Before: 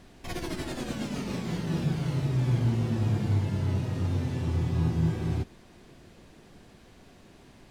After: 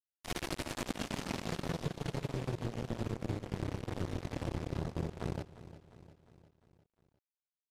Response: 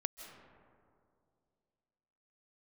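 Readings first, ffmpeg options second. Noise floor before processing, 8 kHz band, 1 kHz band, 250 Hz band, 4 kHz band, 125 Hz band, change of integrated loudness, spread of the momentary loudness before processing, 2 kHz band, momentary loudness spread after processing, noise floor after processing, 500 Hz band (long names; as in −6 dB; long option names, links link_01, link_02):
−54 dBFS, can't be measured, −3.0 dB, −9.0 dB, −3.0 dB, −13.0 dB, −10.0 dB, 8 LU, −3.0 dB, 5 LU, below −85 dBFS, −3.5 dB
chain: -filter_complex "[0:a]acompressor=threshold=-32dB:ratio=16,acrusher=bits=4:mix=0:aa=0.5,asplit=2[link_01][link_02];[link_02]aecho=0:1:353|706|1059|1412|1765:0.168|0.0923|0.0508|0.0279|0.0154[link_03];[link_01][link_03]amix=inputs=2:normalize=0,aresample=32000,aresample=44100,volume=1dB"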